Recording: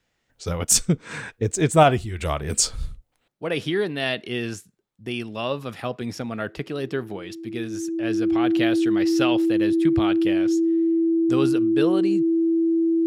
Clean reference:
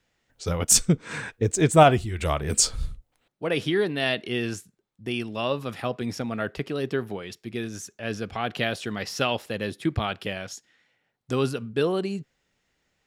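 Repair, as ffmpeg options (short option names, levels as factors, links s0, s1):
-af "bandreject=f=330:w=30"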